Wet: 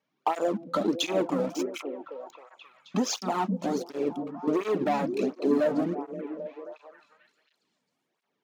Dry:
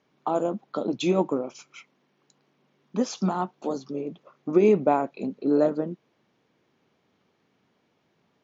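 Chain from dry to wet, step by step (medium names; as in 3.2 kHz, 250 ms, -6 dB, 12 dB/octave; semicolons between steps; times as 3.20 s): bass shelf 390 Hz -7 dB; waveshaping leveller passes 3; compression, threshold -21 dBFS, peak gain reduction 7.5 dB; repeats whose band climbs or falls 265 ms, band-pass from 210 Hz, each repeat 0.7 oct, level -4 dB; cancelling through-zero flanger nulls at 1.4 Hz, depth 3 ms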